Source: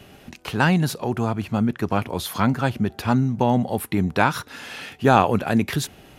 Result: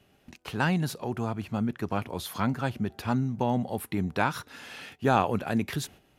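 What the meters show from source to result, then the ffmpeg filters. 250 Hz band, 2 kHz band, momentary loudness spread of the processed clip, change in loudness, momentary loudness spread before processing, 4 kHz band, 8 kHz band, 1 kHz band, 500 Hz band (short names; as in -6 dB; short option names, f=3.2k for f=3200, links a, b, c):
-7.5 dB, -7.5 dB, 11 LU, -7.5 dB, 11 LU, -7.5 dB, -7.5 dB, -7.5 dB, -7.5 dB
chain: -af "agate=range=-9dB:threshold=-40dB:ratio=16:detection=peak,volume=-7.5dB"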